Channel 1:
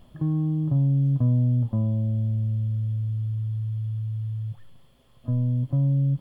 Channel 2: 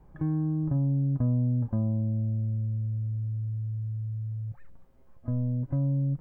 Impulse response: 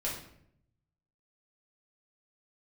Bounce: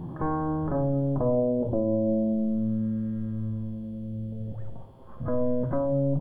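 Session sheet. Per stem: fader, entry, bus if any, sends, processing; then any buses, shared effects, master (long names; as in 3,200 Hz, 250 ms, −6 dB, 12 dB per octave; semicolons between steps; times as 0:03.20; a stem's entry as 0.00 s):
−2.5 dB, 0.00 s, send −13 dB, spectrum averaged block by block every 400 ms; flanger 0.65 Hz, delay 2 ms, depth 4.6 ms, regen −69%
−3.5 dB, 2.5 ms, send −8 dB, ceiling on every frequency bin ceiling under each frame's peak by 20 dB; parametric band 270 Hz +3.5 dB 2 octaves; auto-filter low-pass sine 0.41 Hz 520–1,500 Hz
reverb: on, RT60 0.70 s, pre-delay 4 ms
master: brickwall limiter −17 dBFS, peak gain reduction 4 dB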